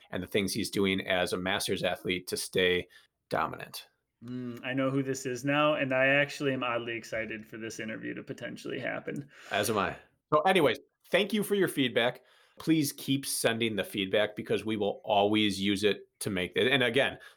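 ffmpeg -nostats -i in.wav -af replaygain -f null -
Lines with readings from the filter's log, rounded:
track_gain = +8.3 dB
track_peak = 0.187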